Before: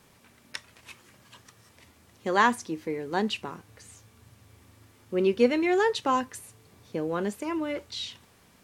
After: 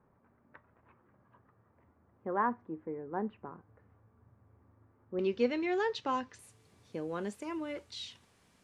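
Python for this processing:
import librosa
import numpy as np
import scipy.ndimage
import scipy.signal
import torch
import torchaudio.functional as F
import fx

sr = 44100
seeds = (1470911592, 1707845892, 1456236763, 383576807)

y = fx.lowpass(x, sr, hz=fx.steps((0.0, 1400.0), (5.19, 5800.0), (6.39, 11000.0)), slope=24)
y = y * 10.0 ** (-8.0 / 20.0)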